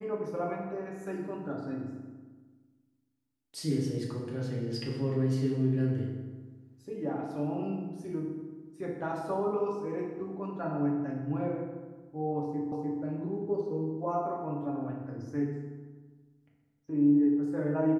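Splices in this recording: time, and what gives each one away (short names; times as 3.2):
12.72 repeat of the last 0.3 s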